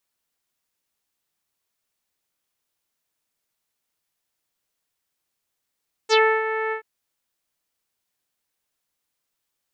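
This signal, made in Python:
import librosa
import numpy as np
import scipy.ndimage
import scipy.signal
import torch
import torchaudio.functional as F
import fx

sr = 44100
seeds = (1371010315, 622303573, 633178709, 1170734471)

y = fx.sub_voice(sr, note=69, wave='saw', cutoff_hz=2000.0, q=3.3, env_oct=2.0, env_s=0.11, attack_ms=42.0, decay_s=0.29, sustain_db=-10.5, release_s=0.1, note_s=0.63, slope=24)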